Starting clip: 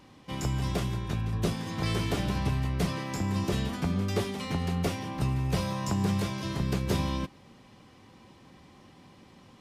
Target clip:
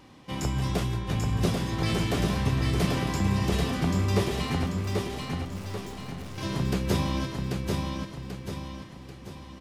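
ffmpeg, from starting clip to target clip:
ffmpeg -i in.wav -filter_complex "[0:a]asettb=1/sr,asplit=3[link_01][link_02][link_03];[link_01]atrim=end=4.664[link_04];[link_02]atrim=start=4.66:end=6.38,asetpts=PTS-STARTPTS,afade=type=in:duration=0.004:curve=qsin,afade=type=out:start_time=1.716:duration=0.004:curve=qsin,aeval=exprs='(tanh(200*val(0)+0.6)-tanh(0.6))/200':channel_layout=same[link_05];[link_03]atrim=start=6.376[link_06];[link_04][link_05]acrossfade=duration=0.004:curve1=hsin:curve2=qsin[link_07];[link_07][link_06]acrossfade=duration=0.004:curve1=qsin:curve2=hsin,aecho=1:1:788|1576|2364|3152|3940|4728:0.668|0.301|0.135|0.0609|0.0274|0.0123,flanger=delay=2.4:depth=9.5:regen=-70:speed=1.1:shape=sinusoidal,volume=6.5dB" out.wav

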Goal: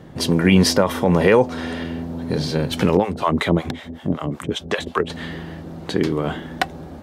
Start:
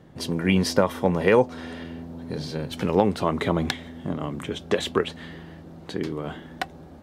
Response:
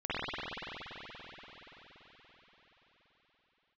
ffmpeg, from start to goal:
-filter_complex "[0:a]asettb=1/sr,asplit=3[link_01][link_02][link_03];[link_01]atrim=end=2.974[link_04];[link_02]atrim=start=2.97:end=5.1,asetpts=PTS-STARTPTS,afade=type=in:duration=0.004:curve=qsin,afade=type=out:start_time=2.126:duration=0.004:curve=qsin,acrossover=split=620[link_05][link_06];[link_05]aeval=exprs='val(0)*(1-1/2+1/2*cos(2*PI*5.3*n/s))':channel_layout=same[link_07];[link_06]aeval=exprs='val(0)*(1-1/2-1/2*cos(2*PI*5.3*n/s))':channel_layout=same[link_08];[link_07][link_08]amix=inputs=2:normalize=0[link_09];[link_03]atrim=start=5.096[link_10];[link_04][link_09]acrossfade=duration=0.004:curve1=hsin:curve2=qsin[link_11];[link_11][link_10]acrossfade=duration=0.004:curve1=qsin:curve2=hsin,alimiter=level_in=12.5dB:limit=-1dB:release=50:level=0:latency=1,volume=-3.5dB"

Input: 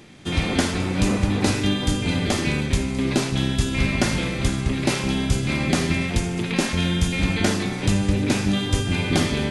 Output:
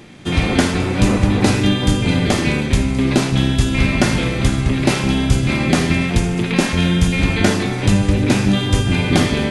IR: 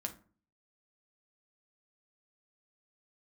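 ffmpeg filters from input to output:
-filter_complex "[0:a]asplit=2[link_01][link_02];[1:a]atrim=start_sample=2205,asetrate=26460,aresample=44100,lowpass=4000[link_03];[link_02][link_03]afir=irnorm=-1:irlink=0,volume=-10dB[link_04];[link_01][link_04]amix=inputs=2:normalize=0,volume=3.5dB"

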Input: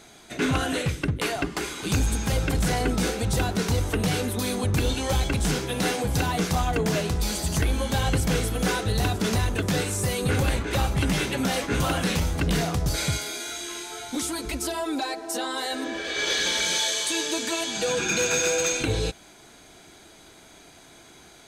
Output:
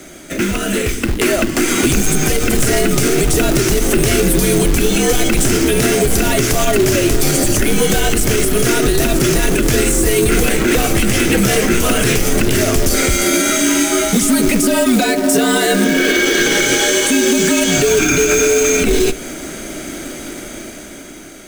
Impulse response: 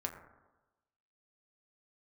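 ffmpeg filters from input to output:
-filter_complex "[0:a]acrossover=split=110|2200[link_01][link_02][link_03];[link_01]acompressor=threshold=-38dB:ratio=4[link_04];[link_02]acompressor=threshold=-34dB:ratio=4[link_05];[link_03]acompressor=threshold=-36dB:ratio=4[link_06];[link_04][link_05][link_06]amix=inputs=3:normalize=0,asplit=2[link_07][link_08];[1:a]atrim=start_sample=2205,asetrate=38808,aresample=44100,adelay=39[link_09];[link_08][link_09]afir=irnorm=-1:irlink=0,volume=-19dB[link_10];[link_07][link_10]amix=inputs=2:normalize=0,dynaudnorm=framelen=210:gausssize=11:maxgain=9dB,equalizer=frequency=160:width_type=o:width=0.67:gain=-8,equalizer=frequency=400:width_type=o:width=0.67:gain=6,equalizer=frequency=1000:width_type=o:width=0.67:gain=-10,equalizer=frequency=4000:width_type=o:width=0.67:gain=-10,acrusher=bits=3:mode=log:mix=0:aa=0.000001,afreqshift=-62,alimiter=level_in=17.5dB:limit=-1dB:release=50:level=0:latency=1,volume=-3dB"

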